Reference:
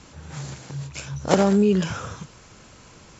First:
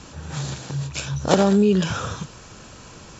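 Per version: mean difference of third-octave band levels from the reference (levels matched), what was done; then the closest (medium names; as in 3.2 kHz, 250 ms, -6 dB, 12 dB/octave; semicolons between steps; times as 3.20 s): 2.5 dB: dynamic bell 3.7 kHz, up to +5 dB, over -54 dBFS, Q 3.1; in parallel at +1 dB: compression, threshold -27 dBFS, peak gain reduction 14.5 dB; on the sum: band-stop 2.1 kHz, Q 10; trim -1 dB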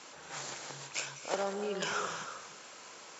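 10.0 dB: reverse; compression 6:1, threshold -26 dBFS, peak gain reduction 13.5 dB; reverse; high-pass 510 Hz 12 dB/octave; gated-style reverb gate 350 ms rising, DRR 8.5 dB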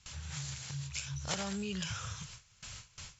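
7.5 dB: gate with hold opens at -37 dBFS; FFT filter 120 Hz 0 dB, 280 Hz -20 dB, 3.1 kHz +4 dB; compression 2:1, threshold -50 dBFS, peak gain reduction 16 dB; trim +4.5 dB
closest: first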